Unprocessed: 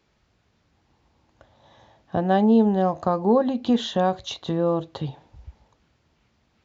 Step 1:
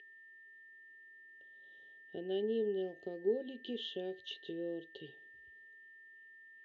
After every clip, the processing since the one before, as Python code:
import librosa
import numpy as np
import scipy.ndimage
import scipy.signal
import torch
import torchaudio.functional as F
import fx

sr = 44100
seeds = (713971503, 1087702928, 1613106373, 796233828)

y = x + 10.0 ** (-28.0 / 20.0) * np.sin(2.0 * np.pi * 1800.0 * np.arange(len(x)) / sr)
y = fx.dynamic_eq(y, sr, hz=1100.0, q=0.78, threshold_db=-32.0, ratio=4.0, max_db=-4)
y = fx.double_bandpass(y, sr, hz=1100.0, octaves=2.9)
y = y * librosa.db_to_amplitude(-5.0)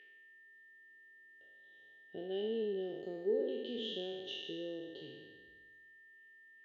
y = fx.spec_trails(x, sr, decay_s=1.43)
y = y * librosa.db_to_amplitude(-3.0)